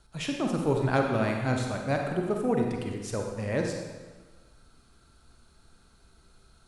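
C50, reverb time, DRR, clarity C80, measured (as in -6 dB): 2.5 dB, 1.4 s, 1.5 dB, 4.5 dB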